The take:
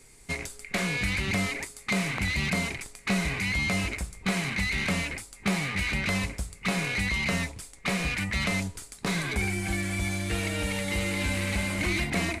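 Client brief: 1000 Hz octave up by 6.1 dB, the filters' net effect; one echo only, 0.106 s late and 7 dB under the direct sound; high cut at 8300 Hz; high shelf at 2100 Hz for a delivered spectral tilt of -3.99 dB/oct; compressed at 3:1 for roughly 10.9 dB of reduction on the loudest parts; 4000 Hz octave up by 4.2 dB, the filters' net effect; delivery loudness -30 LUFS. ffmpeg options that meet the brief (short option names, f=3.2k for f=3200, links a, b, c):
-af "lowpass=8.3k,equalizer=f=1k:t=o:g=8.5,highshelf=f=2.1k:g=-4,equalizer=f=4k:t=o:g=8.5,acompressor=threshold=-37dB:ratio=3,aecho=1:1:106:0.447,volume=6dB"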